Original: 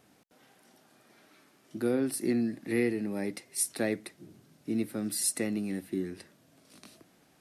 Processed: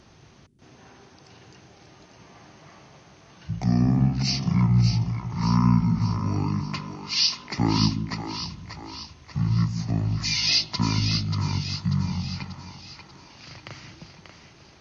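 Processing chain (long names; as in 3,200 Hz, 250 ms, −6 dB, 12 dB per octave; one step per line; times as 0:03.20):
in parallel at −2 dB: downward compressor, threshold −41 dBFS, peak gain reduction 17 dB
on the sum: echo with a time of its own for lows and highs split 640 Hz, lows 83 ms, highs 294 ms, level −7 dB
wrong playback speed 15 ips tape played at 7.5 ips
level +5.5 dB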